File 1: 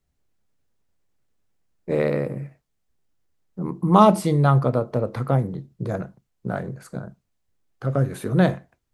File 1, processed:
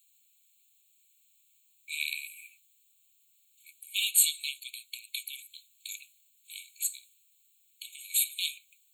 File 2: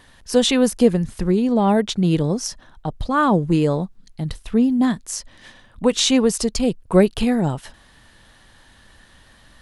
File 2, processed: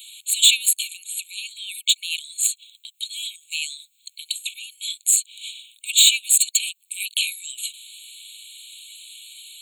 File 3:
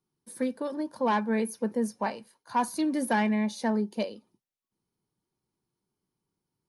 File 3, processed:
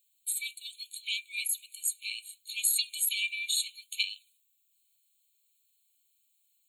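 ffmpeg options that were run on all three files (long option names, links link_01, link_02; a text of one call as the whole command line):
ffmpeg -i in.wav -filter_complex "[0:a]crystalizer=i=5:c=0,bandreject=frequency=151.4:width_type=h:width=4,bandreject=frequency=302.8:width_type=h:width=4,asplit=2[link_01][link_02];[link_02]acompressor=threshold=-25dB:ratio=5,volume=2dB[link_03];[link_01][link_03]amix=inputs=2:normalize=0,asoftclip=type=hard:threshold=-5.5dB,afftfilt=real='re*eq(mod(floor(b*sr/1024/2200),2),1)':imag='im*eq(mod(floor(b*sr/1024/2200),2),1)':win_size=1024:overlap=0.75,volume=-1dB" out.wav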